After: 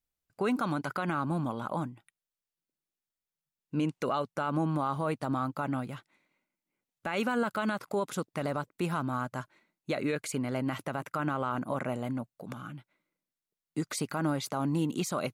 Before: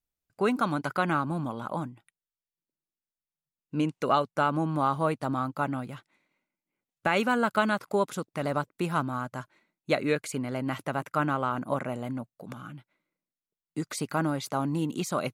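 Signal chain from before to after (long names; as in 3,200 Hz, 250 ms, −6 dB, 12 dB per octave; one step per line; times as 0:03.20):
brickwall limiter −20.5 dBFS, peak gain reduction 9 dB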